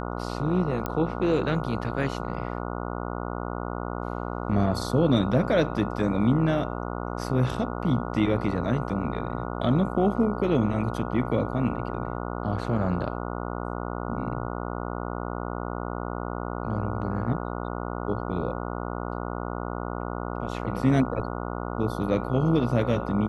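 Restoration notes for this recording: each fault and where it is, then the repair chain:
buzz 60 Hz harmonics 24 -32 dBFS
0.86 pop -15 dBFS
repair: de-click; de-hum 60 Hz, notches 24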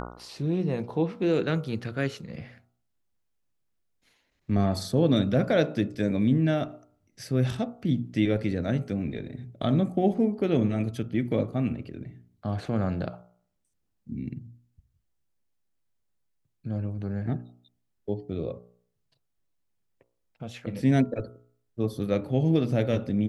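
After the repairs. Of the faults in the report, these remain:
0.86 pop

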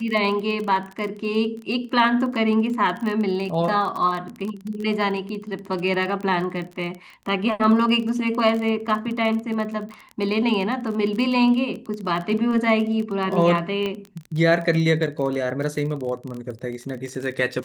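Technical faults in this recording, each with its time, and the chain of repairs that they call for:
crackle 27/s -28 dBFS
13.86 pop -15 dBFS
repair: de-click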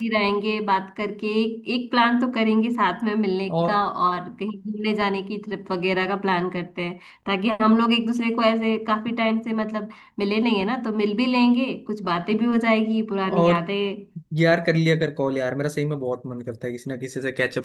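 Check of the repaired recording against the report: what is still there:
none

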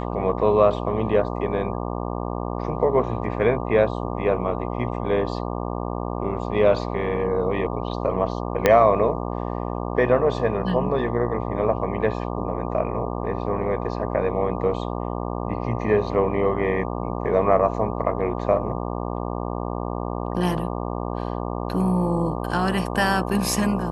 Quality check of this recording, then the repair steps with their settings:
buzz 60 Hz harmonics 20 -28 dBFS
8.66 pop -3 dBFS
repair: de-click; de-hum 60 Hz, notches 20

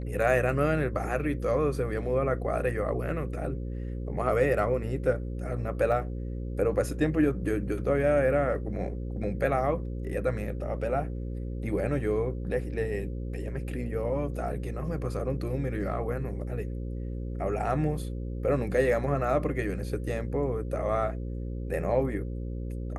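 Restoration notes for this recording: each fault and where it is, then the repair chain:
buzz 60 Hz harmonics 9 -34 dBFS
5.92 gap 2.2 ms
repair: de-hum 60 Hz, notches 9; interpolate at 5.92, 2.2 ms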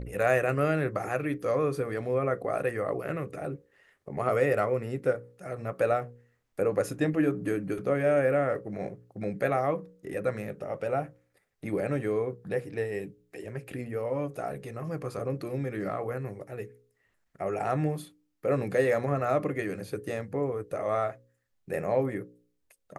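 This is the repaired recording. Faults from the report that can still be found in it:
none

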